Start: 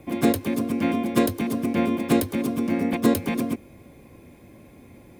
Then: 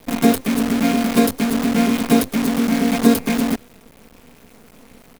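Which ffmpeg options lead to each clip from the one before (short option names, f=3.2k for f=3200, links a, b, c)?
-af "aecho=1:1:4.4:0.89,acrusher=bits=5:dc=4:mix=0:aa=0.000001,volume=2dB"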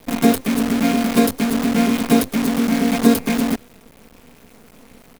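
-af anull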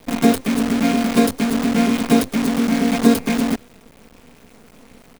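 -af "equalizer=f=13k:w=1.7:g=-6.5"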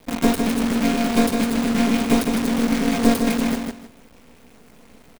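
-af "aeval=exprs='(tanh(2*val(0)+0.7)-tanh(0.7))/2':c=same,aecho=1:1:156|312|468:0.562|0.129|0.0297"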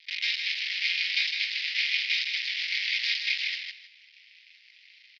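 -af "asuperpass=centerf=3200:order=12:qfactor=1,volume=5.5dB"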